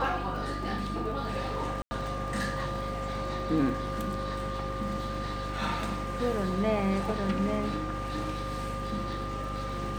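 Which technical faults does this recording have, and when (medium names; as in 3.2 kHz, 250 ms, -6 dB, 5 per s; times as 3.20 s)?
crackle 23 per s -39 dBFS
hum 50 Hz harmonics 7 -37 dBFS
whine 1.2 kHz -37 dBFS
1.82–1.91 s: dropout 90 ms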